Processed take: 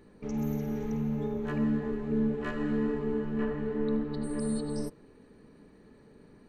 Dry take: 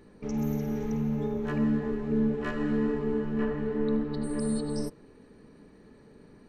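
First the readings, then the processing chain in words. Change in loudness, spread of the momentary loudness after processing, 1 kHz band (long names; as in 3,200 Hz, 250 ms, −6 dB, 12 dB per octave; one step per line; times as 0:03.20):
−2.0 dB, 4 LU, −2.0 dB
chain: parametric band 5,400 Hz −4.5 dB 0.22 octaves
level −2 dB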